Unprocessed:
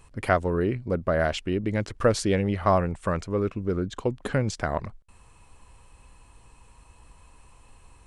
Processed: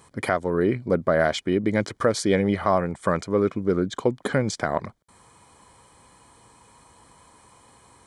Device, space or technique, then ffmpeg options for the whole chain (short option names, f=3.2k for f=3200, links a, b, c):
PA system with an anti-feedback notch: -af "highpass=150,asuperstop=centerf=2700:order=12:qfactor=6.8,alimiter=limit=-12.5dB:level=0:latency=1:release=412,volume=5.5dB"